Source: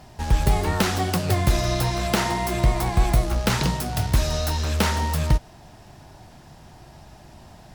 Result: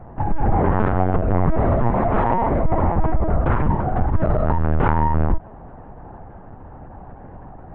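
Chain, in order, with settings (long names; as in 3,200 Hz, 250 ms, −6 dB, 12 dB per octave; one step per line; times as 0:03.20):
low-pass filter 1,400 Hz 24 dB per octave
in parallel at −2 dB: compressor whose output falls as the input rises −22 dBFS, ratio −0.5
on the sum: soft clipping −10.5 dBFS, distortion −20 dB
linear-prediction vocoder at 8 kHz pitch kept
level +2 dB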